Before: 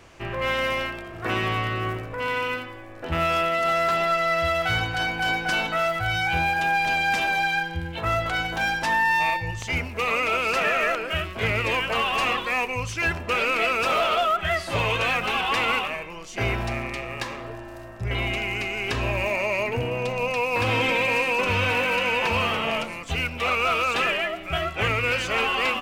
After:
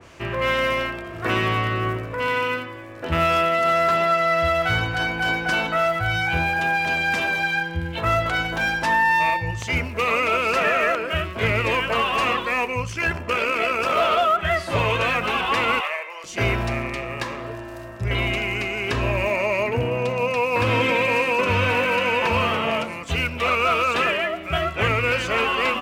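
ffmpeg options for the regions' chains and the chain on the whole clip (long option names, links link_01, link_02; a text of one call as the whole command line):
ffmpeg -i in.wav -filter_complex "[0:a]asettb=1/sr,asplit=3[link_01][link_02][link_03];[link_01]atrim=end=12.824[link_04];[link_02]atrim=start=12.82:end=13.97,asetpts=PTS-STARTPTS,afade=type=in:duration=0.004:curve=qsin,afade=type=out:start_time=1.146:duration=0.004:curve=qsin,bandreject=frequency=3800:width=11,tremolo=f=65:d=0.462[link_05];[link_03]atrim=start=13.966[link_06];[link_04][link_05]acrossfade=duration=0.004:curve1=hsin:curve2=qsin[link_07];[link_07][link_06]acrossfade=duration=0.004:curve1=qsin:curve2=hsin,asettb=1/sr,asplit=3[link_08][link_09][link_10];[link_08]atrim=end=15.804[link_11];[link_09]atrim=start=15.8:end=16.24,asetpts=PTS-STARTPTS,afade=type=in:duration=0.004:curve=qsin,afade=type=out:start_time=0.436:duration=0.004:curve=qsin,highpass=frequency=540:width=0.5412,highpass=frequency=540:width=1.3066,equalizer=frequency=2000:width_type=o:width=0.2:gain=9.5[link_12];[link_10]atrim=start=16.236[link_13];[link_11][link_12]acrossfade=duration=0.004:curve1=hsin:curve2=qsin[link_14];[link_14][link_13]acrossfade=duration=0.004:curve1=qsin:curve2=hsin,highpass=45,bandreject=frequency=780:width=12,adynamicequalizer=threshold=0.0126:dfrequency=2100:dqfactor=0.7:tfrequency=2100:tqfactor=0.7:attack=5:release=100:ratio=0.375:range=2.5:mode=cutabove:tftype=highshelf,volume=4dB" out.wav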